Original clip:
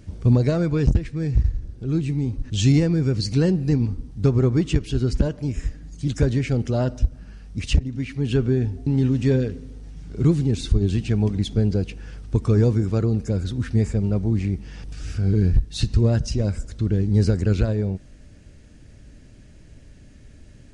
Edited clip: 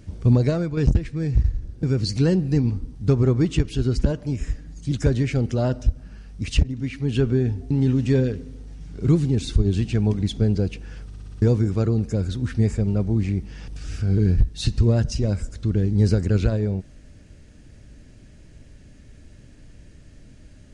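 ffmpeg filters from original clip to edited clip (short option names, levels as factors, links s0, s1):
-filter_complex "[0:a]asplit=9[s0][s1][s2][s3][s4][s5][s6][s7][s8];[s0]atrim=end=0.77,asetpts=PTS-STARTPTS,afade=t=out:st=0.47:d=0.3:silence=0.421697[s9];[s1]atrim=start=0.77:end=1.832,asetpts=PTS-STARTPTS,afade=t=in:d=0.004:c=hsin:silence=0.421697[s10];[s2]atrim=start=2.988:end=12.282[s11];[s3]atrim=start=12.218:end=12.282[s12];[s4]atrim=start=12.218:end=12.282[s13];[s5]atrim=start=12.218:end=12.282[s14];[s6]atrim=start=12.218:end=12.282[s15];[s7]atrim=start=12.218:end=12.282[s16];[s8]atrim=start=12.578[s17];[s9][s10]concat=n=2:v=0:a=1[s18];[s18][s11]acrossfade=d=0.004:c1=hsin:c2=hsin[s19];[s19][s12]acrossfade=d=0.004:c1=hsin:c2=hsin[s20];[s20][s13]acrossfade=d=0.004:c1=hsin:c2=hsin[s21];[s21][s14]acrossfade=d=0.004:c1=hsin:c2=hsin[s22];[s22][s15]acrossfade=d=0.004:c1=hsin:c2=hsin[s23];[s23][s16]acrossfade=d=0.004:c1=hsin:c2=hsin[s24];[s24][s17]acrossfade=d=0.004:c1=hsin:c2=hsin"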